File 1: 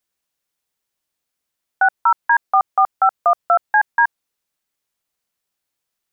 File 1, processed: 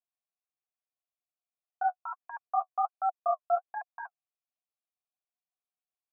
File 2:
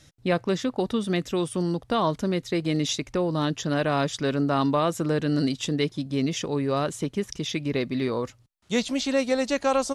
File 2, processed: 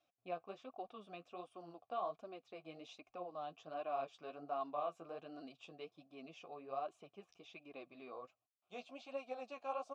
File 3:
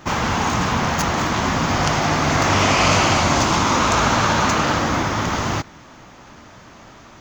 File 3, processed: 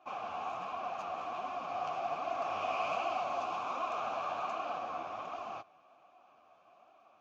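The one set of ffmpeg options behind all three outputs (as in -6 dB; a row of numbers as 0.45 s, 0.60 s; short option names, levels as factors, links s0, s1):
-filter_complex "[0:a]flanger=delay=2.8:depth=9.5:regen=23:speed=1.3:shape=sinusoidal,asplit=3[s0][s1][s2];[s0]bandpass=f=730:t=q:w=8,volume=1[s3];[s1]bandpass=f=1090:t=q:w=8,volume=0.501[s4];[s2]bandpass=f=2440:t=q:w=8,volume=0.355[s5];[s3][s4][s5]amix=inputs=3:normalize=0,volume=0.562"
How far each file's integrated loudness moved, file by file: -15.5 LU, -21.5 LU, -19.0 LU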